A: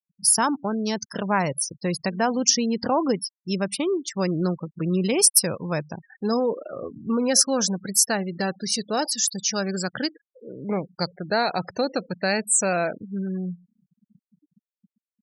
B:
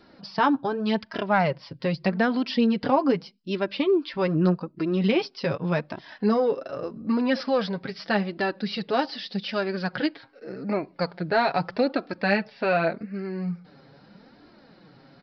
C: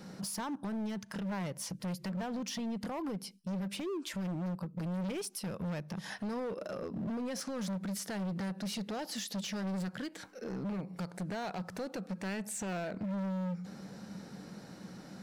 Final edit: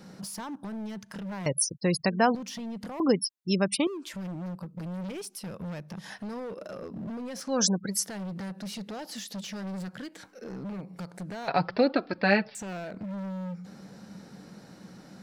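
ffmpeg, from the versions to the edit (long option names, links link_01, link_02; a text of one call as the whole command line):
ffmpeg -i take0.wav -i take1.wav -i take2.wav -filter_complex "[0:a]asplit=3[link_01][link_02][link_03];[2:a]asplit=5[link_04][link_05][link_06][link_07][link_08];[link_04]atrim=end=1.462[link_09];[link_01]atrim=start=1.458:end=2.352[link_10];[link_05]atrim=start=2.348:end=3.002[link_11];[link_02]atrim=start=2.998:end=3.872[link_12];[link_06]atrim=start=3.868:end=7.66[link_13];[link_03]atrim=start=7.42:end=8.07[link_14];[link_07]atrim=start=7.83:end=11.482[link_15];[1:a]atrim=start=11.478:end=12.552[link_16];[link_08]atrim=start=12.548[link_17];[link_09][link_10]acrossfade=duration=0.004:curve1=hsin:curve2=hsin[link_18];[link_18][link_11]acrossfade=duration=0.004:curve1=hsin:curve2=hsin[link_19];[link_19][link_12]acrossfade=duration=0.004:curve1=hsin:curve2=hsin[link_20];[link_20][link_13]acrossfade=duration=0.004:curve1=hsin:curve2=hsin[link_21];[link_21][link_14]acrossfade=duration=0.24:curve1=tri:curve2=tri[link_22];[link_22][link_15]acrossfade=duration=0.24:curve1=tri:curve2=tri[link_23];[link_23][link_16]acrossfade=duration=0.004:curve1=hsin:curve2=hsin[link_24];[link_24][link_17]acrossfade=duration=0.004:curve1=hsin:curve2=hsin" out.wav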